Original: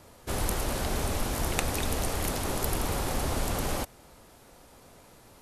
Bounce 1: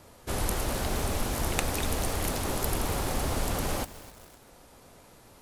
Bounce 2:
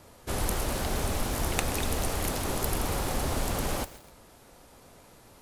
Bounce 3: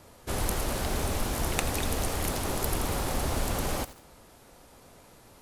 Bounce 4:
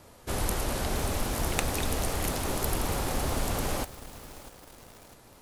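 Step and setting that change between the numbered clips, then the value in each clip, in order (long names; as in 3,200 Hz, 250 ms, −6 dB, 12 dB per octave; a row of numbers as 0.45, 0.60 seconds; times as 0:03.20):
feedback echo at a low word length, delay time: 257, 129, 84, 651 milliseconds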